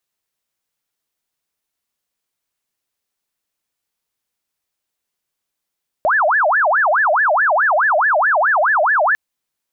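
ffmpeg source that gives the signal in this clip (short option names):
-f lavfi -i "aevalsrc='0.266*sin(2*PI*(1177.5*t-582.5/(2*PI*4.7)*sin(2*PI*4.7*t)))':d=3.1:s=44100"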